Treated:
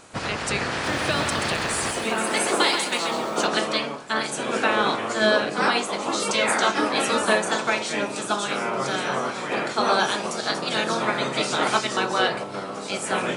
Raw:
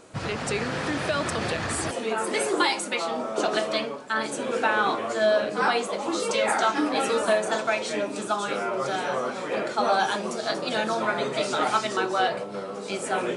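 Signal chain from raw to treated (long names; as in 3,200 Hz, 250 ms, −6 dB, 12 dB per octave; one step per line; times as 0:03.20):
ceiling on every frequency bin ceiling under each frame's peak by 12 dB
0:00.71–0:03.46: feedback echo at a low word length 130 ms, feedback 35%, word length 8 bits, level −6 dB
level +2 dB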